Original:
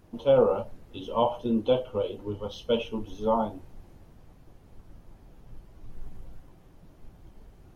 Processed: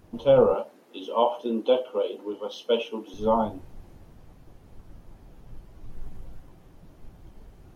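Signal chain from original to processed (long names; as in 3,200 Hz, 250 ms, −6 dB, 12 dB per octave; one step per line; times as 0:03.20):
0:00.54–0:03.14: high-pass filter 260 Hz 24 dB per octave
level +2.5 dB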